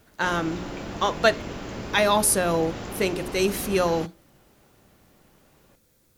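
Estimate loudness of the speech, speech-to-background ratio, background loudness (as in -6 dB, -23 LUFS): -24.0 LUFS, 11.5 dB, -35.5 LUFS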